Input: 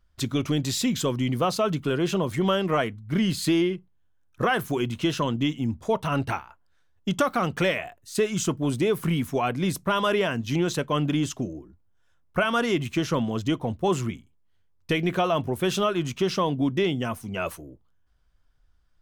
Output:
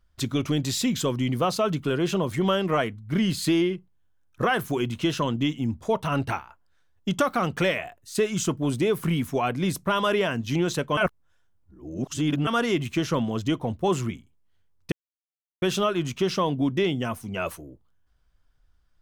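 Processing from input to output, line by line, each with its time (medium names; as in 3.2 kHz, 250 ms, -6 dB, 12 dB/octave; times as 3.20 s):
10.97–12.47 s: reverse
14.92–15.62 s: mute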